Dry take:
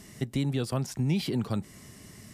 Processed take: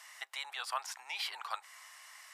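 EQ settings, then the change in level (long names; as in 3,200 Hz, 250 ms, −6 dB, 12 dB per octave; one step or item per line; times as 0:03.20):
Butterworth high-pass 870 Hz 36 dB per octave
high-shelf EQ 3,500 Hz −11.5 dB
+6.0 dB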